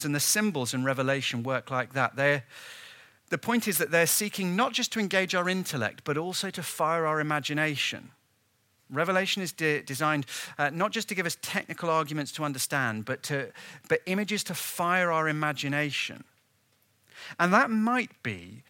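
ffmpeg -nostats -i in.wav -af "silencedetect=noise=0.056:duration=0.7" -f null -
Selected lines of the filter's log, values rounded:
silence_start: 2.37
silence_end: 3.33 | silence_duration: 0.95
silence_start: 7.90
silence_end: 8.96 | silence_duration: 1.06
silence_start: 16.05
silence_end: 17.40 | silence_duration: 1.35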